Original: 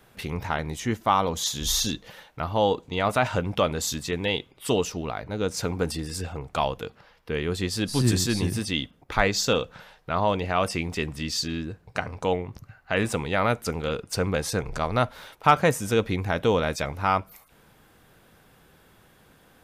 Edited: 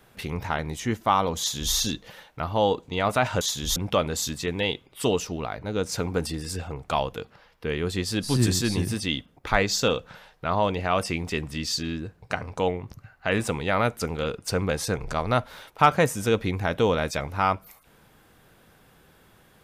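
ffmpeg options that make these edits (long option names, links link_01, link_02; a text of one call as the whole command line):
ffmpeg -i in.wav -filter_complex "[0:a]asplit=3[link_01][link_02][link_03];[link_01]atrim=end=3.412[link_04];[link_02]atrim=start=1.388:end=1.742[link_05];[link_03]atrim=start=3.408[link_06];[link_04][link_05]acrossfade=duration=0.004:curve1=hsin:curve2=hsin[link_07];[link_07][link_06]acrossfade=duration=0.004:curve1=hsin:curve2=hsin" out.wav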